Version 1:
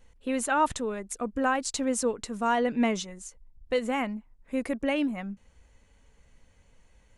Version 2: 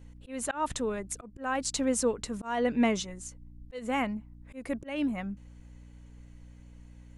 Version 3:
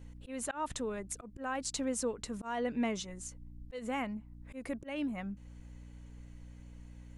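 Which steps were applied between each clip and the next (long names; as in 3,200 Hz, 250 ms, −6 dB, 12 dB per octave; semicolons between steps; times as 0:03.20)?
mains hum 60 Hz, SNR 20 dB; volume swells 243 ms
downward compressor 1.5 to 1, threshold −43 dBFS, peak gain reduction 8 dB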